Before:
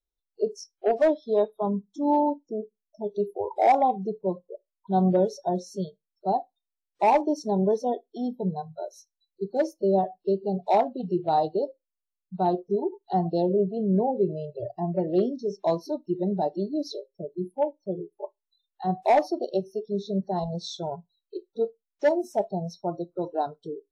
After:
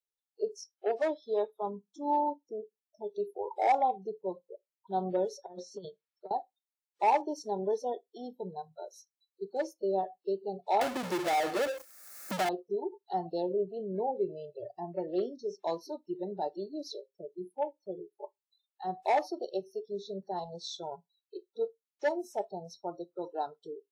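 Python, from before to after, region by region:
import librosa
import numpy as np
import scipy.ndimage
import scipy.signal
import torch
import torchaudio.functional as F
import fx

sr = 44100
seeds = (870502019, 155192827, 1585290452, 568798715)

y = fx.chain(x, sr, fx.lowpass(hz=3800.0, slope=12),
    fx.over_compress(threshold_db=-32.0, ratio=-0.5), at=(5.42, 6.31))
y = fx.chain(y, sr, fx.fixed_phaser(hz=620.0, stages=8),
    fx.power_curve(exponent=0.35),
    fx.band_squash(depth_pct=100), at=(10.81, 12.49))
y = fx.highpass(y, sr, hz=550.0, slope=6)
y = y + 0.32 * np.pad(y, (int(2.3 * sr / 1000.0), 0))[:len(y)]
y = y * librosa.db_to_amplitude(-4.5)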